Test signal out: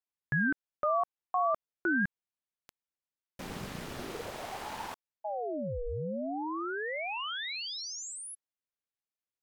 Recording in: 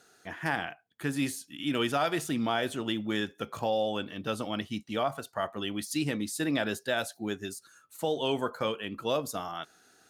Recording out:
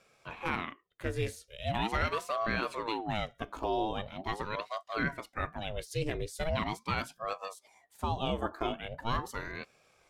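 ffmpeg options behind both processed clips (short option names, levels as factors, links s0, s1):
-af "aemphasis=mode=reproduction:type=cd,aeval=exprs='val(0)*sin(2*PI*530*n/s+530*0.7/0.41*sin(2*PI*0.41*n/s))':c=same"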